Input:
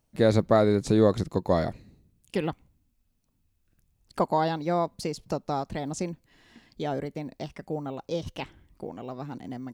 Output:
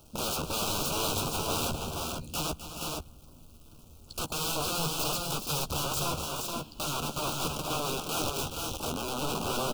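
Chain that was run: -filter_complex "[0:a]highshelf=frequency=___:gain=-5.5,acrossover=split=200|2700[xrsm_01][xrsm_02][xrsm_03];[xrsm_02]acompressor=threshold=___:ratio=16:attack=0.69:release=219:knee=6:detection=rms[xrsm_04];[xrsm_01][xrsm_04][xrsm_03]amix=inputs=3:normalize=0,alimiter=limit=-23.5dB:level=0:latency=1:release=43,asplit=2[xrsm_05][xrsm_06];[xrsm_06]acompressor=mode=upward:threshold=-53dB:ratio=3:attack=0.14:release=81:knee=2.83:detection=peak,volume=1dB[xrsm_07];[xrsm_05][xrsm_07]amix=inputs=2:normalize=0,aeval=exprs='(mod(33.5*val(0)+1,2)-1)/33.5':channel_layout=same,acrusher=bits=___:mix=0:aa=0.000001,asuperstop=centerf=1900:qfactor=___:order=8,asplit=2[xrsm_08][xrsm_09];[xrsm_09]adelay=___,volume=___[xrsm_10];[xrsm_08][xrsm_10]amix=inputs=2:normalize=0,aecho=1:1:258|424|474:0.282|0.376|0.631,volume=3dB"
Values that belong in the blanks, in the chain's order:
7k, -32dB, 9, 1.8, 13, -8dB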